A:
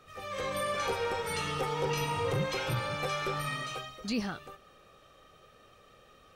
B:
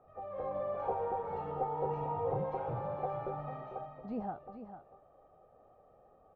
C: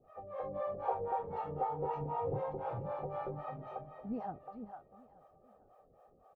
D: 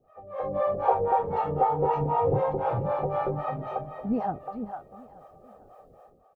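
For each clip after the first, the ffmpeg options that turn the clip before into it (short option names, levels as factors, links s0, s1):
-af "lowpass=f=760:t=q:w=4.9,aecho=1:1:446:0.316,volume=0.422"
-filter_complex "[0:a]acrossover=split=480[s0][s1];[s0]aeval=exprs='val(0)*(1-1/2+1/2*cos(2*PI*3.9*n/s))':c=same[s2];[s1]aeval=exprs='val(0)*(1-1/2-1/2*cos(2*PI*3.9*n/s))':c=same[s3];[s2][s3]amix=inputs=2:normalize=0,aecho=1:1:876:0.0708,volume=1.5"
-af "dynaudnorm=f=110:g=7:m=3.98"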